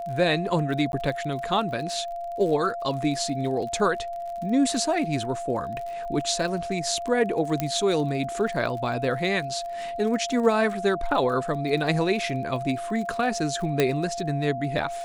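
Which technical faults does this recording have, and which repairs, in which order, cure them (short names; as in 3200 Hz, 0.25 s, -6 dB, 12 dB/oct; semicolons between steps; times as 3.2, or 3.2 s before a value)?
crackle 42/s -34 dBFS
tone 690 Hz -30 dBFS
0.92–0.93 gap 11 ms
7.6 pop -11 dBFS
13.8 pop -7 dBFS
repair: de-click; notch 690 Hz, Q 30; interpolate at 0.92, 11 ms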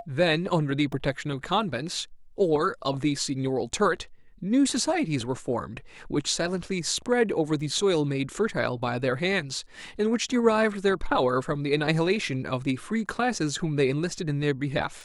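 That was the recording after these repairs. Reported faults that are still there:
7.6 pop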